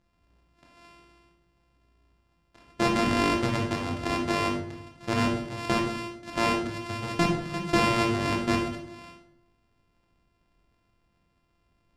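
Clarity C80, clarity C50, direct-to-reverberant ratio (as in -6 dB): 8.0 dB, 4.5 dB, -0.5 dB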